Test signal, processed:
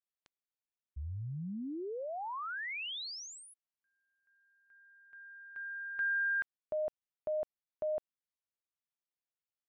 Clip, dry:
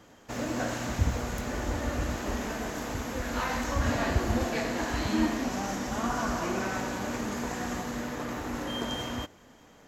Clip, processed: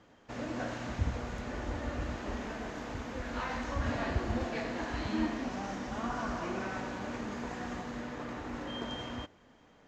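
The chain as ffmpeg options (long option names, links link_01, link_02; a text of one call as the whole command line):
ffmpeg -i in.wav -af "lowpass=4500,volume=-5.5dB" out.wav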